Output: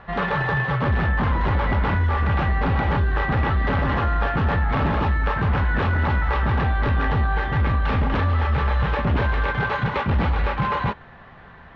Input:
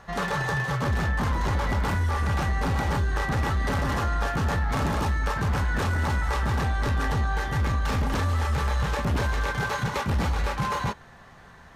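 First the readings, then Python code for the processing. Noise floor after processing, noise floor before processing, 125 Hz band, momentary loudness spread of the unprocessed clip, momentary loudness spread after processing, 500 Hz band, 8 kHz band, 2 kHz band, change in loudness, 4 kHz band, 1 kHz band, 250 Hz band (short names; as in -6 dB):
-45 dBFS, -49 dBFS, +4.5 dB, 2 LU, 2 LU, +4.5 dB, under -20 dB, +4.5 dB, +4.5 dB, 0.0 dB, +4.5 dB, +4.5 dB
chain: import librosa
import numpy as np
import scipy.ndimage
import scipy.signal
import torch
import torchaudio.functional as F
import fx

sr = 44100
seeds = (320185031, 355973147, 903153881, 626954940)

y = scipy.signal.sosfilt(scipy.signal.butter(4, 3300.0, 'lowpass', fs=sr, output='sos'), x)
y = F.gain(torch.from_numpy(y), 4.5).numpy()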